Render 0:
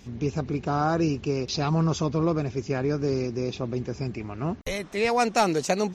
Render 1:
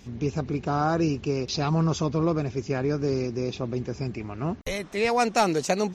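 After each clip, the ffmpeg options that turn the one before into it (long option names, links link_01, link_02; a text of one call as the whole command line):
ffmpeg -i in.wav -af anull out.wav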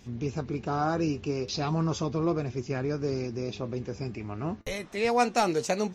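ffmpeg -i in.wav -af "flanger=delay=8.1:depth=2.2:regen=68:speed=0.38:shape=triangular,volume=1dB" out.wav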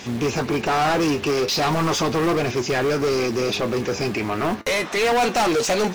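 ffmpeg -i in.wav -filter_complex "[0:a]acrusher=bits=7:mode=log:mix=0:aa=0.000001,asplit=2[link_01][link_02];[link_02]highpass=frequency=720:poles=1,volume=30dB,asoftclip=type=tanh:threshold=-12.5dB[link_03];[link_01][link_03]amix=inputs=2:normalize=0,lowpass=frequency=4600:poles=1,volume=-6dB" out.wav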